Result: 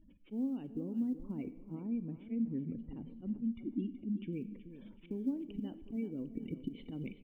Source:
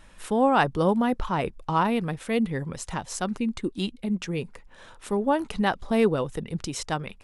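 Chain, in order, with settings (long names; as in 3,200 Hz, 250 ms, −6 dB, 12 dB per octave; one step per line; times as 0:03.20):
gate on every frequency bin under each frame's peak −20 dB strong
parametric band 390 Hz +6.5 dB 2.6 octaves
speech leveller within 4 dB 0.5 s
volume swells 143 ms
downward compressor 6 to 1, threshold −30 dBFS, peak gain reduction 16.5 dB
formant resonators in series i
floating-point word with a short mantissa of 6 bits
0:01.75–0:04.33: high-frequency loss of the air 270 metres
repeating echo 376 ms, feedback 41%, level −12.5 dB
four-comb reverb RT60 1 s, combs from 27 ms, DRR 14.5 dB
level +2 dB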